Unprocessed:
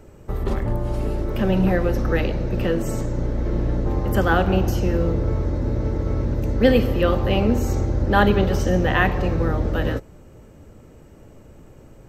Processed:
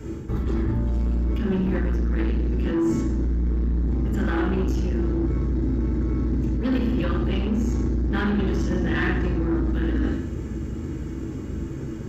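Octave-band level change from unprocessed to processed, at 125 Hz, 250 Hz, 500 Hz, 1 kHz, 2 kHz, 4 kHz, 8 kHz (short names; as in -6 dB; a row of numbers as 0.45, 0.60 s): -2.5 dB, -0.5 dB, -8.0 dB, -10.5 dB, -6.5 dB, -8.0 dB, n/a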